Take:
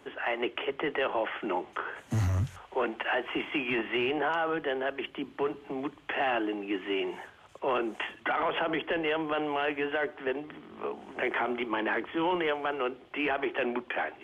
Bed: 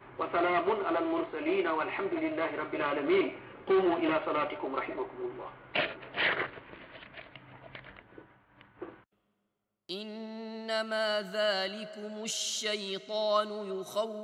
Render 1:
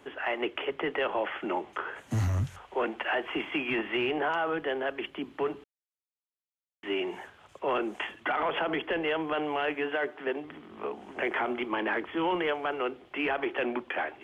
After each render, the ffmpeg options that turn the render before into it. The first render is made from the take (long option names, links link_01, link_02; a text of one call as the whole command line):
ffmpeg -i in.wav -filter_complex "[0:a]asettb=1/sr,asplit=3[link_01][link_02][link_03];[link_01]atrim=end=9.744[link_04];[link_02]atrim=start=9.74:end=10.45,asetpts=PTS-STARTPTS,afade=type=in:duration=0.004:curve=qsin,afade=type=out:start_time=0.706:duration=0.004:curve=qsin,highpass=140[link_05];[link_03]atrim=start=10.446[link_06];[link_04][link_05]acrossfade=duration=0.004:curve1=hsin:curve2=qsin[link_07];[link_07][link_06]acrossfade=duration=0.004:curve1=qsin:curve2=hsin,asplit=3[link_08][link_09][link_10];[link_08]atrim=end=5.64,asetpts=PTS-STARTPTS,afade=type=out:start_time=5.636:duration=0.004:curve=hsin[link_11];[link_09]atrim=start=5.64:end=6.83,asetpts=PTS-STARTPTS,volume=0[link_12];[link_10]atrim=start=6.83,asetpts=PTS-STARTPTS,afade=type=in:duration=0.004:curve=hsin[link_13];[link_11][link_12][link_13]concat=n=3:v=0:a=1" out.wav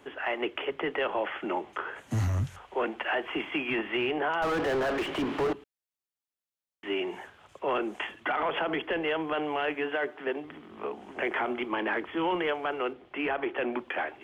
ffmpeg -i in.wav -filter_complex "[0:a]asettb=1/sr,asplit=3[link_01][link_02][link_03];[link_01]atrim=end=4.424[link_04];[link_02]atrim=start=4.42:end=5.53,asetpts=PTS-STARTPTS,afade=type=in:duration=0.004:curve=qsin,afade=type=out:start_time=1.106:duration=0.004:curve=qsin,asplit=2[link_05][link_06];[link_06]highpass=frequency=720:poles=1,volume=37dB,asoftclip=type=tanh:threshold=-20.5dB[link_07];[link_05][link_07]amix=inputs=2:normalize=0,lowpass=frequency=1100:poles=1,volume=-6dB[link_08];[link_03]atrim=start=5.526[link_09];[link_04][link_08]acrossfade=duration=0.004:curve1=hsin:curve2=qsin[link_10];[link_10][link_09]acrossfade=duration=0.004:curve1=qsin:curve2=hsin,asettb=1/sr,asplit=3[link_11][link_12][link_13];[link_11]atrim=end=12.934[link_14];[link_12]atrim=start=12.93:end=13.73,asetpts=PTS-STARTPTS,afade=type=in:duration=0.004:curve=qsin,afade=type=out:start_time=0.796:duration=0.004:curve=qsin,highshelf=frequency=4700:gain=-10[link_15];[link_13]atrim=start=13.726[link_16];[link_14][link_15]acrossfade=duration=0.004:curve1=hsin:curve2=qsin[link_17];[link_17][link_16]acrossfade=duration=0.004:curve1=qsin:curve2=hsin" out.wav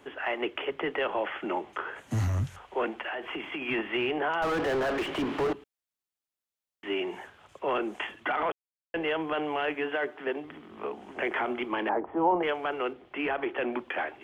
ffmpeg -i in.wav -filter_complex "[0:a]asettb=1/sr,asplit=3[link_01][link_02][link_03];[link_01]atrim=end=2.904[link_04];[link_02]atrim=start=2.9:end=3.62,asetpts=PTS-STARTPTS,afade=type=in:duration=0.004:curve=qsin,afade=type=out:start_time=0.716:duration=0.004:curve=qsin,acompressor=threshold=-31dB:ratio=6:attack=3.2:release=140:knee=1:detection=peak[link_05];[link_03]atrim=start=3.616[link_06];[link_04][link_05]acrossfade=duration=0.004:curve1=hsin:curve2=qsin[link_07];[link_07][link_06]acrossfade=duration=0.004:curve1=qsin:curve2=hsin,asettb=1/sr,asplit=3[link_08][link_09][link_10];[link_08]atrim=end=11.894[link_11];[link_09]atrim=start=11.89:end=12.43,asetpts=PTS-STARTPTS,afade=type=in:duration=0.004:curve=qsin,afade=type=out:start_time=0.536:duration=0.004:curve=qsin,lowpass=frequency=790:width_type=q:width=2.8[link_12];[link_10]atrim=start=12.426[link_13];[link_11][link_12]acrossfade=duration=0.004:curve1=hsin:curve2=qsin[link_14];[link_14][link_13]acrossfade=duration=0.004:curve1=qsin:curve2=hsin,asplit=3[link_15][link_16][link_17];[link_15]atrim=end=8.52,asetpts=PTS-STARTPTS,afade=type=out:start_time=8.516:duration=0.004:curve=hsin[link_18];[link_16]atrim=start=8.52:end=8.94,asetpts=PTS-STARTPTS,volume=0[link_19];[link_17]atrim=start=8.94,asetpts=PTS-STARTPTS,afade=type=in:duration=0.004:curve=hsin[link_20];[link_18][link_19][link_20]concat=n=3:v=0:a=1" out.wav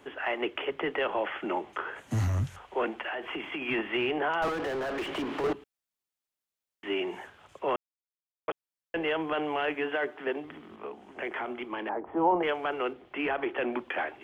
ffmpeg -i in.wav -filter_complex "[0:a]asettb=1/sr,asplit=3[link_01][link_02][link_03];[link_01]atrim=end=4.484[link_04];[link_02]atrim=start=4.48:end=5.44,asetpts=PTS-STARTPTS,afade=type=in:duration=0.004:curve=qsin,afade=type=out:start_time=0.956:duration=0.004:curve=qsin,acrossover=split=95|220[link_05][link_06][link_07];[link_05]acompressor=threshold=-54dB:ratio=4[link_08];[link_06]acompressor=threshold=-49dB:ratio=4[link_09];[link_07]acompressor=threshold=-30dB:ratio=4[link_10];[link_08][link_09][link_10]amix=inputs=3:normalize=0[link_11];[link_03]atrim=start=5.436[link_12];[link_04][link_11]acrossfade=duration=0.004:curve1=hsin:curve2=qsin[link_13];[link_13][link_12]acrossfade=duration=0.004:curve1=qsin:curve2=hsin,asplit=5[link_14][link_15][link_16][link_17][link_18];[link_14]atrim=end=7.76,asetpts=PTS-STARTPTS,afade=type=out:start_time=7.756:duration=0.004:curve=hsin[link_19];[link_15]atrim=start=7.76:end=8.48,asetpts=PTS-STARTPTS,volume=0[link_20];[link_16]atrim=start=8.48:end=10.762,asetpts=PTS-STARTPTS,afade=type=in:duration=0.004:curve=hsin[link_21];[link_17]atrim=start=10.758:end=12.062,asetpts=PTS-STARTPTS,volume=-5dB[link_22];[link_18]atrim=start=12.058[link_23];[link_19][link_20][link_21]concat=n=3:v=0:a=1[link_24];[link_24][link_22]acrossfade=duration=0.004:curve1=hsin:curve2=hsin[link_25];[link_25][link_23]acrossfade=duration=0.004:curve1=hsin:curve2=hsin" out.wav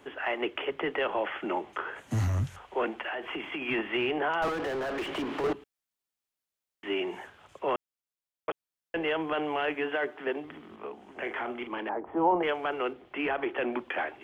ffmpeg -i in.wav -filter_complex "[0:a]asettb=1/sr,asplit=3[link_01][link_02][link_03];[link_01]atrim=end=11.174[link_04];[link_02]atrim=start=11.17:end=11.81,asetpts=PTS-STARTPTS,afade=type=in:duration=0.004:curve=qsin,afade=type=out:start_time=0.636:duration=0.004:curve=qsin,asplit=2[link_05][link_06];[link_06]adelay=42,volume=-8dB[link_07];[link_05][link_07]amix=inputs=2:normalize=0,atrim=end_sample=28224[link_08];[link_03]atrim=start=11.806[link_09];[link_04][link_08]acrossfade=duration=0.004:curve1=hsin:curve2=qsin[link_10];[link_10][link_09]acrossfade=duration=0.004:curve1=qsin:curve2=hsin" out.wav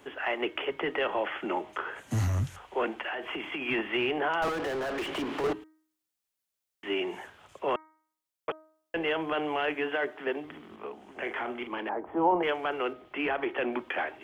ffmpeg -i in.wav -af "highshelf=frequency=4600:gain=4.5,bandreject=frequency=313.6:width_type=h:width=4,bandreject=frequency=627.2:width_type=h:width=4,bandreject=frequency=940.8:width_type=h:width=4,bandreject=frequency=1254.4:width_type=h:width=4,bandreject=frequency=1568:width_type=h:width=4,bandreject=frequency=1881.6:width_type=h:width=4,bandreject=frequency=2195.2:width_type=h:width=4" out.wav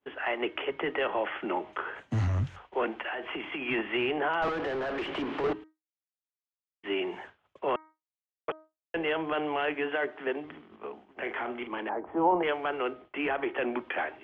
ffmpeg -i in.wav -af "lowpass=3500,agate=range=-33dB:threshold=-43dB:ratio=3:detection=peak" out.wav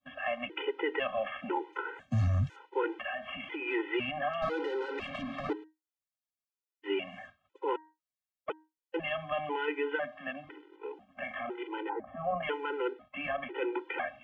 ffmpeg -i in.wav -af "afftfilt=real='re*gt(sin(2*PI*1*pts/sr)*(1-2*mod(floor(b*sr/1024/260),2)),0)':imag='im*gt(sin(2*PI*1*pts/sr)*(1-2*mod(floor(b*sr/1024/260),2)),0)':win_size=1024:overlap=0.75" out.wav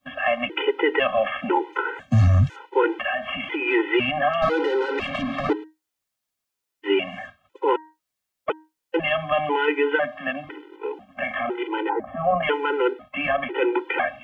ffmpeg -i in.wav -af "volume=11.5dB" out.wav